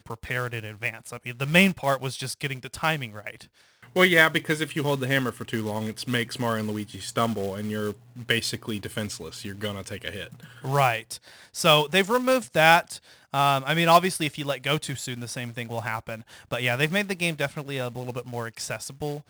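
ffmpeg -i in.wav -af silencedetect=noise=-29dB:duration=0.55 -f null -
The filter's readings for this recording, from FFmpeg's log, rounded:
silence_start: 3.30
silence_end: 3.96 | silence_duration: 0.66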